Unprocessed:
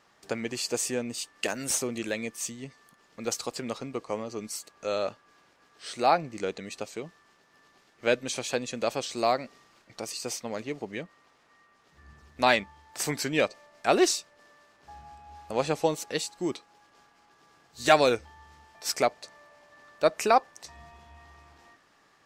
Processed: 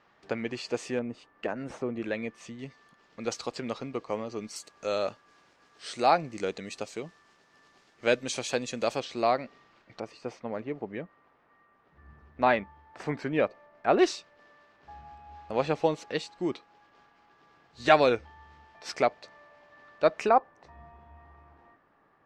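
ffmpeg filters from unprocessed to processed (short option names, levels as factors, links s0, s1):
-af "asetnsamples=n=441:p=0,asendcmd='0.99 lowpass f 1400;2.02 lowpass f 2400;2.59 lowpass f 4600;4.56 lowpass f 8500;9 lowpass f 3400;10 lowpass f 1700;13.99 lowpass f 3400;20.29 lowpass f 1400',lowpass=3100"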